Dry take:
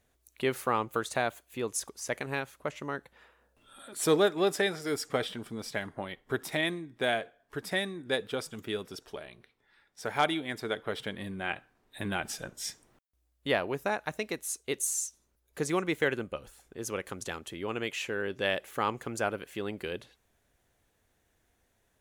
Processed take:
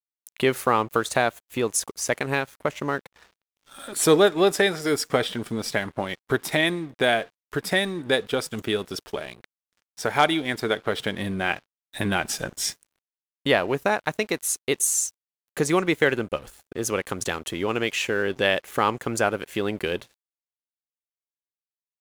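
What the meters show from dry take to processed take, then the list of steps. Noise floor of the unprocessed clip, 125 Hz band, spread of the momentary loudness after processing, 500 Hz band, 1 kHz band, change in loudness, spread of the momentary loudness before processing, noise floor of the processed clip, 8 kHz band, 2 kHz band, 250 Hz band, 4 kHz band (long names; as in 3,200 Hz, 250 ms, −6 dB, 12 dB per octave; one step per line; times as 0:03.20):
−74 dBFS, +8.5 dB, 10 LU, +8.0 dB, +8.0 dB, +8.0 dB, 12 LU, below −85 dBFS, +9.0 dB, +8.0 dB, +8.5 dB, +8.5 dB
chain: in parallel at +1.5 dB: downward compressor, threshold −38 dBFS, peak gain reduction 17 dB
on the sum: dead-zone distortion −51 dBFS
level +6 dB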